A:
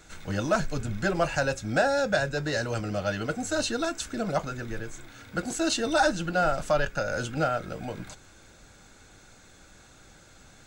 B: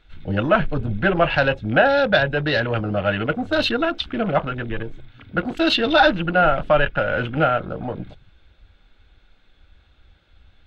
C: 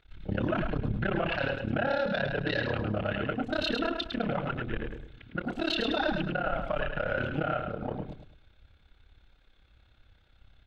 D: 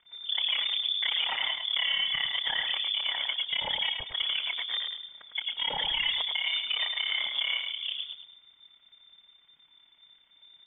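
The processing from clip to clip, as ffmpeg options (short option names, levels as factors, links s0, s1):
-af "afwtdn=0.0112,highshelf=f=4900:t=q:w=3:g=-14,volume=2.37"
-af "alimiter=limit=0.188:level=0:latency=1:release=19,tremolo=f=34:d=0.974,aecho=1:1:105|210|315|420:0.501|0.145|0.0421|0.0122,volume=0.668"
-af "lowpass=f=3100:t=q:w=0.5098,lowpass=f=3100:t=q:w=0.6013,lowpass=f=3100:t=q:w=0.9,lowpass=f=3100:t=q:w=2.563,afreqshift=-3600"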